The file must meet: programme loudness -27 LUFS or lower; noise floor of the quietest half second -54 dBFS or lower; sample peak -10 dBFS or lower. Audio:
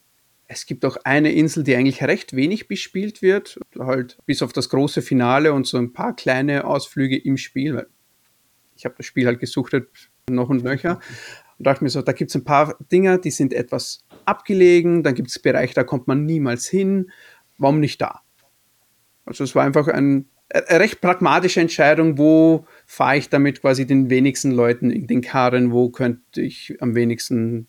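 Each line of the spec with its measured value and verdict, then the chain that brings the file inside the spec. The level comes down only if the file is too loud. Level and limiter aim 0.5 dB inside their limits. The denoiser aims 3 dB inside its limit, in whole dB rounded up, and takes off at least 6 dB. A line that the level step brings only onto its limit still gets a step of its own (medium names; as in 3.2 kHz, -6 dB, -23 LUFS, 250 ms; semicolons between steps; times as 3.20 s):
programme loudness -18.5 LUFS: fail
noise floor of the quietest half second -61 dBFS: pass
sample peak -3.5 dBFS: fail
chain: trim -9 dB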